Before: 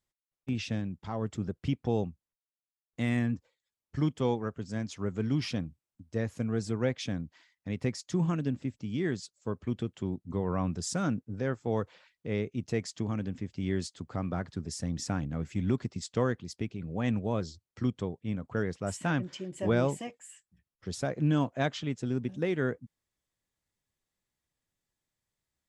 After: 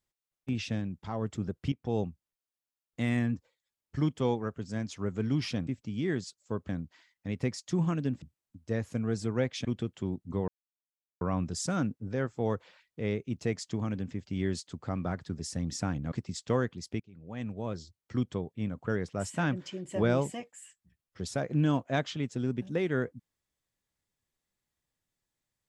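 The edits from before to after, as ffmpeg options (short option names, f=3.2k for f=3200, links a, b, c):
-filter_complex "[0:a]asplit=9[a][b][c][d][e][f][g][h][i];[a]atrim=end=1.72,asetpts=PTS-STARTPTS,afade=t=out:st=1.716:d=0.004:c=hsin:silence=0.199526[j];[b]atrim=start=1.72:end=5.672,asetpts=PTS-STARTPTS,afade=t=in:d=0.28:silence=0.199526[k];[c]atrim=start=8.628:end=9.652[l];[d]atrim=start=7.098:end=8.632[m];[e]atrim=start=5.668:end=7.102[n];[f]atrim=start=9.648:end=10.48,asetpts=PTS-STARTPTS,afade=t=out:st=0.828:d=0.004:c=hsin,apad=pad_dur=0.73[o];[g]atrim=start=10.48:end=15.392,asetpts=PTS-STARTPTS,afade=t=in:d=0.004:c=hsin[p];[h]atrim=start=15.788:end=16.67,asetpts=PTS-STARTPTS,afade=t=out:st=0.878:d=0.004:c=hsin:silence=0.105925[q];[i]atrim=start=16.67,asetpts=PTS-STARTPTS,afade=t=in:d=1.26:silence=0.105925[r];[j][k]concat=n=2:v=0:a=1[s];[s][l]acrossfade=d=0.004:c1=hsin:c2=hsin[t];[t][m]acrossfade=d=0.004:c1=hsin:c2=hsin[u];[u][n]acrossfade=d=0.004:c1=hsin:c2=hsin[v];[o][p]concat=n=2:v=0:a=1[w];[v][w]acrossfade=d=0.004:c1=hsin:c2=hsin[x];[q][r]concat=n=2:v=0:a=1[y];[x][y]acrossfade=d=0.004:c1=hsin:c2=hsin"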